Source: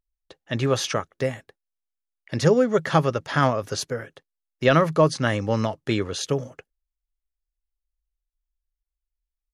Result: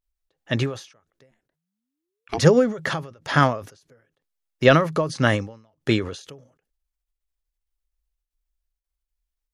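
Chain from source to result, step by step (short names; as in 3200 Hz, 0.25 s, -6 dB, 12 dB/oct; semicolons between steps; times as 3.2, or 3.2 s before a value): 1.3–2.37 ring modulator 98 Hz -> 580 Hz; ending taper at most 120 dB/s; gain +4 dB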